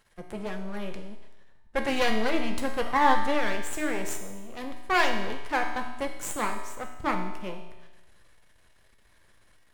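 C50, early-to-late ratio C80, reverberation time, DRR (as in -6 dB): 6.5 dB, 8.0 dB, 1.1 s, 2.5 dB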